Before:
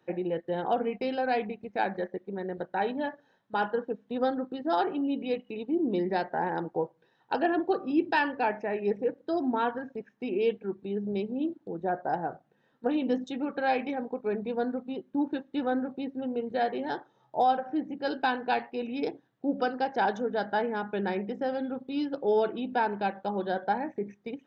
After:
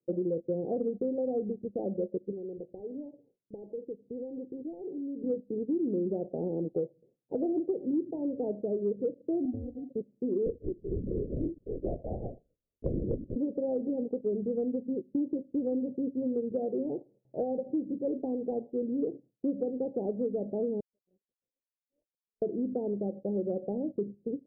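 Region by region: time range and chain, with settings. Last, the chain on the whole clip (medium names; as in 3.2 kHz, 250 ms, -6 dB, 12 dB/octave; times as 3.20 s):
2.31–5.24 s: self-modulated delay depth 0.22 ms + comb 2.5 ms, depth 35% + compression 3:1, threshold -42 dBFS
9.45–9.89 s: cascade formant filter u + sample-rate reducer 1 kHz
10.46–13.36 s: high-pass 390 Hz 6 dB/octave + LPC vocoder at 8 kHz whisper
20.80–22.42 s: brick-wall FIR high-pass 1.9 kHz + loudspeaker Doppler distortion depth 0.91 ms
whole clip: gate with hold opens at -55 dBFS; steep low-pass 560 Hz 48 dB/octave; compression, threshold -31 dBFS; trim +4 dB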